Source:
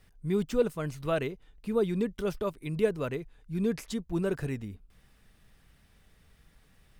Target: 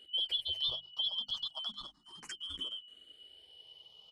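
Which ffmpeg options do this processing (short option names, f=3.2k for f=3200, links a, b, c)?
-filter_complex "[0:a]afftfilt=real='real(if(lt(b,272),68*(eq(floor(b/68),0)*1+eq(floor(b/68),1)*3+eq(floor(b/68),2)*0+eq(floor(b/68),3)*2)+mod(b,68),b),0)':imag='imag(if(lt(b,272),68*(eq(floor(b/68),0)*1+eq(floor(b/68),1)*3+eq(floor(b/68),2)*0+eq(floor(b/68),3)*2)+mod(b,68),b),0)':win_size=2048:overlap=0.75,highshelf=f=4.9k:g=8,asplit=2[a][b];[b]adelay=14,volume=-6dB[c];[a][c]amix=inputs=2:normalize=0,asplit=2[d][e];[e]asoftclip=type=tanh:threshold=-26.5dB,volume=-9dB[f];[d][f]amix=inputs=2:normalize=0,aemphasis=mode=reproduction:type=50kf,atempo=1.7,lowpass=f=11k:w=0.5412,lowpass=f=11k:w=1.3066,bandreject=f=50:t=h:w=6,bandreject=f=100:t=h:w=6,bandreject=f=150:t=h:w=6,bandreject=f=200:t=h:w=6,bandreject=f=250:t=h:w=6,bandreject=f=300:t=h:w=6,acompressor=threshold=-31dB:ratio=6,asplit=2[g][h];[h]afreqshift=0.32[i];[g][i]amix=inputs=2:normalize=1"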